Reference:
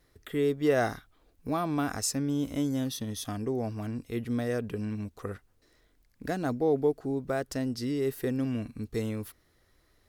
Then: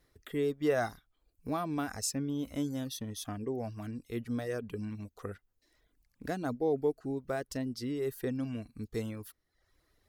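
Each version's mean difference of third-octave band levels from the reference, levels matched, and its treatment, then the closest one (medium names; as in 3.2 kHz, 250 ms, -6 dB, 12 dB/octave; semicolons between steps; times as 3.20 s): 2.5 dB: reverb removal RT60 0.69 s; trim -3.5 dB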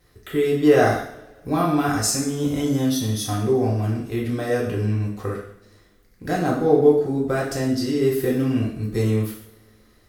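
5.0 dB: two-slope reverb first 0.62 s, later 2.2 s, from -24 dB, DRR -4 dB; trim +4 dB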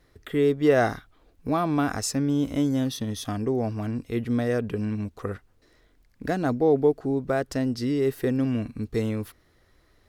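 1.5 dB: treble shelf 6 kHz -8 dB; trim +5.5 dB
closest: third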